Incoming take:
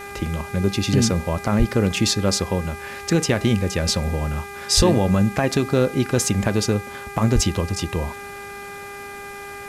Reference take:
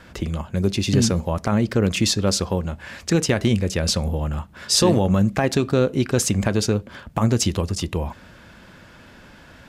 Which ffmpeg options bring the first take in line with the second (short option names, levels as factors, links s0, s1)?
-filter_complex "[0:a]bandreject=f=402.1:t=h:w=4,bandreject=f=804.2:t=h:w=4,bandreject=f=1206.3:t=h:w=4,bandreject=f=1608.4:t=h:w=4,bandreject=f=2010.5:t=h:w=4,bandreject=f=2412.6:t=h:w=4,asplit=3[s0][s1][s2];[s0]afade=t=out:st=1.58:d=0.02[s3];[s1]highpass=f=140:w=0.5412,highpass=f=140:w=1.3066,afade=t=in:st=1.58:d=0.02,afade=t=out:st=1.7:d=0.02[s4];[s2]afade=t=in:st=1.7:d=0.02[s5];[s3][s4][s5]amix=inputs=3:normalize=0,asplit=3[s6][s7][s8];[s6]afade=t=out:st=4.76:d=0.02[s9];[s7]highpass=f=140:w=0.5412,highpass=f=140:w=1.3066,afade=t=in:st=4.76:d=0.02,afade=t=out:st=4.88:d=0.02[s10];[s8]afade=t=in:st=4.88:d=0.02[s11];[s9][s10][s11]amix=inputs=3:normalize=0,asplit=3[s12][s13][s14];[s12]afade=t=out:st=7.34:d=0.02[s15];[s13]highpass=f=140:w=0.5412,highpass=f=140:w=1.3066,afade=t=in:st=7.34:d=0.02,afade=t=out:st=7.46:d=0.02[s16];[s14]afade=t=in:st=7.46:d=0.02[s17];[s15][s16][s17]amix=inputs=3:normalize=0,afwtdn=0.0056"